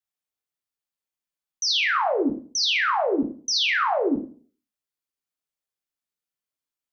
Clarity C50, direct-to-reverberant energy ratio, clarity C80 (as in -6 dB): 8.5 dB, 2.0 dB, 13.0 dB